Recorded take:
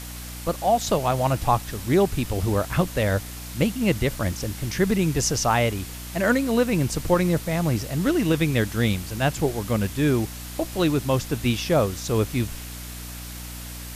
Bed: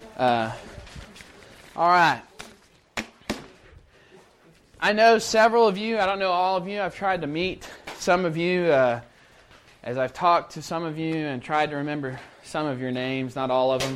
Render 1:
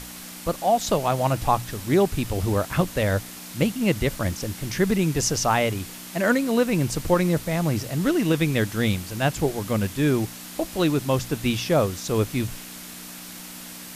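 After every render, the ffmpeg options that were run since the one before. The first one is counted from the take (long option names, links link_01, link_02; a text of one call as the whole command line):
ffmpeg -i in.wav -af "bandreject=frequency=60:width_type=h:width=6,bandreject=frequency=120:width_type=h:width=6" out.wav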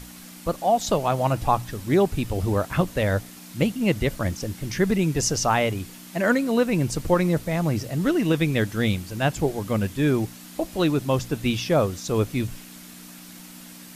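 ffmpeg -i in.wav -af "afftdn=noise_reduction=6:noise_floor=-39" out.wav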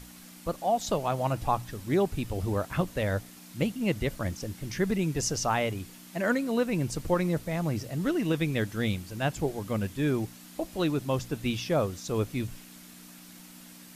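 ffmpeg -i in.wav -af "volume=-6dB" out.wav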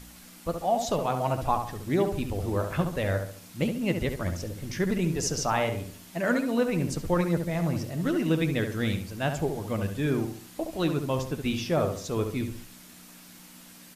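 ffmpeg -i in.wav -filter_complex "[0:a]asplit=2[link_01][link_02];[link_02]adelay=12,volume=-12dB[link_03];[link_01][link_03]amix=inputs=2:normalize=0,asplit=2[link_04][link_05];[link_05]adelay=69,lowpass=frequency=2000:poles=1,volume=-6dB,asplit=2[link_06][link_07];[link_07]adelay=69,lowpass=frequency=2000:poles=1,volume=0.41,asplit=2[link_08][link_09];[link_09]adelay=69,lowpass=frequency=2000:poles=1,volume=0.41,asplit=2[link_10][link_11];[link_11]adelay=69,lowpass=frequency=2000:poles=1,volume=0.41,asplit=2[link_12][link_13];[link_13]adelay=69,lowpass=frequency=2000:poles=1,volume=0.41[link_14];[link_04][link_06][link_08][link_10][link_12][link_14]amix=inputs=6:normalize=0" out.wav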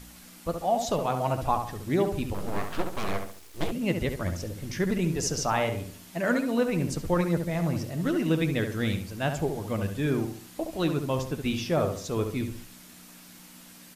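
ffmpeg -i in.wav -filter_complex "[0:a]asettb=1/sr,asplit=3[link_01][link_02][link_03];[link_01]atrim=end=2.344[link_04];[link_02]atrim=start=2.34:end=3.72,asetpts=PTS-STARTPTS,afade=type=in:duration=0.004:curve=qsin,afade=type=out:start_time=1.376:duration=0.004:curve=qsin,aeval=exprs='abs(val(0))':channel_layout=same[link_05];[link_03]atrim=start=3.716[link_06];[link_04][link_05]acrossfade=duration=0.004:curve1=hsin:curve2=qsin[link_07];[link_07][link_06]acrossfade=duration=0.004:curve1=qsin:curve2=hsin" out.wav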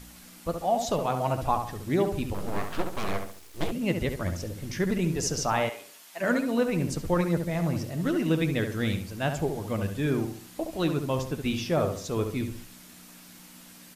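ffmpeg -i in.wav -filter_complex "[0:a]asplit=3[link_01][link_02][link_03];[link_01]afade=type=out:start_time=5.68:duration=0.02[link_04];[link_02]highpass=710,afade=type=in:start_time=5.68:duration=0.02,afade=type=out:start_time=6.2:duration=0.02[link_05];[link_03]afade=type=in:start_time=6.2:duration=0.02[link_06];[link_04][link_05][link_06]amix=inputs=3:normalize=0" out.wav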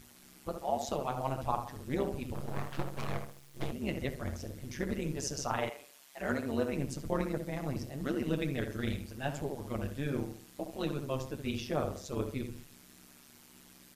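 ffmpeg -i in.wav -af "flanger=delay=8.1:depth=1.5:regen=-55:speed=1.2:shape=triangular,tremolo=f=140:d=0.857" out.wav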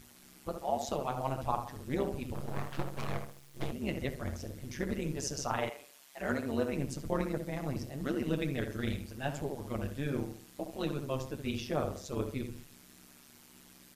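ffmpeg -i in.wav -af anull out.wav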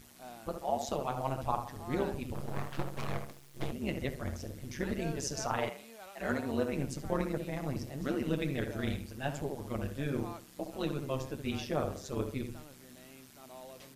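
ffmpeg -i in.wav -i bed.wav -filter_complex "[1:a]volume=-28dB[link_01];[0:a][link_01]amix=inputs=2:normalize=0" out.wav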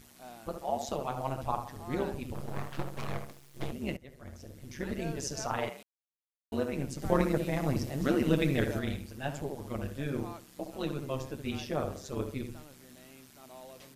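ffmpeg -i in.wav -filter_complex "[0:a]asplit=6[link_01][link_02][link_03][link_04][link_05][link_06];[link_01]atrim=end=3.97,asetpts=PTS-STARTPTS,afade=type=out:start_time=3.966:duration=0.004:curve=hsin:silence=0.0841395[link_07];[link_02]atrim=start=3.97:end=5.83,asetpts=PTS-STARTPTS,afade=type=in:duration=1.05:silence=0.0841395,afade=type=out:start_time=1.856:duration=0.004:curve=hsin[link_08];[link_03]atrim=start=5.83:end=6.52,asetpts=PTS-STARTPTS,volume=0[link_09];[link_04]atrim=start=6.52:end=7.022,asetpts=PTS-STARTPTS,afade=type=in:duration=0.004:curve=hsin[link_10];[link_05]atrim=start=7.018:end=8.792,asetpts=PTS-STARTPTS,volume=6dB[link_11];[link_06]atrim=start=8.788[link_12];[link_07][link_08][link_09][link_10]concat=n=4:v=0:a=1[link_13];[link_13][link_11]acrossfade=duration=0.004:curve1=hsin:curve2=hsin[link_14];[link_14][link_12]acrossfade=duration=0.004:curve1=hsin:curve2=hsin" out.wav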